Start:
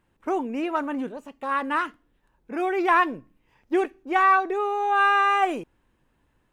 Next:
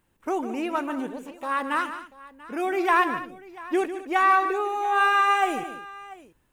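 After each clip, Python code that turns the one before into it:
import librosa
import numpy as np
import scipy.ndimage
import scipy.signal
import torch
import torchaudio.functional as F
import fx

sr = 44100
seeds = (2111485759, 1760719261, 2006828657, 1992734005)

y = fx.high_shelf(x, sr, hz=6100.0, db=12.0)
y = fx.echo_multitap(y, sr, ms=(148, 214, 689), db=(-11.0, -16.0, -19.5))
y = F.gain(torch.from_numpy(y), -1.5).numpy()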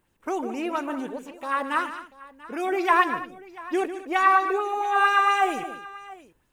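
y = fx.bell_lfo(x, sr, hz=4.4, low_hz=420.0, high_hz=6500.0, db=7)
y = F.gain(torch.from_numpy(y), -1.5).numpy()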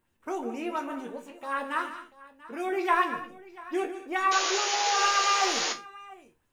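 y = fx.spec_paint(x, sr, seeds[0], shape='noise', start_s=4.31, length_s=1.42, low_hz=360.0, high_hz=7100.0, level_db=-25.0)
y = fx.resonator_bank(y, sr, root=39, chord='minor', decay_s=0.22)
y = F.gain(torch.from_numpy(y), 5.0).numpy()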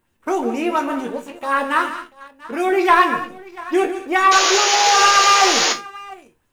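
y = fx.leveller(x, sr, passes=1)
y = F.gain(torch.from_numpy(y), 8.5).numpy()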